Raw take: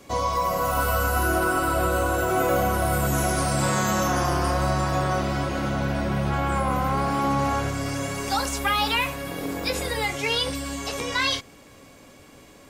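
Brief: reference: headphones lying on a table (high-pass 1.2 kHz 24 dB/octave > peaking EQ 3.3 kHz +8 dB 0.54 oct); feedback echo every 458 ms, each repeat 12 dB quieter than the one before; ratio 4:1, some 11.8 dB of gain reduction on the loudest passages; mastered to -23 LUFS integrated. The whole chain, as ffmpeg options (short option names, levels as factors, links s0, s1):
-af "acompressor=threshold=0.02:ratio=4,highpass=f=1200:w=0.5412,highpass=f=1200:w=1.3066,equalizer=f=3300:t=o:w=0.54:g=8,aecho=1:1:458|916|1374:0.251|0.0628|0.0157,volume=4.73"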